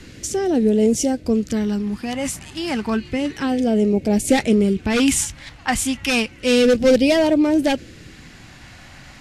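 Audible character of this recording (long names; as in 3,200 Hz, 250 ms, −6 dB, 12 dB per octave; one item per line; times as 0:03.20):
phaser sweep stages 2, 0.31 Hz, lowest notch 420–1,100 Hz
Ogg Vorbis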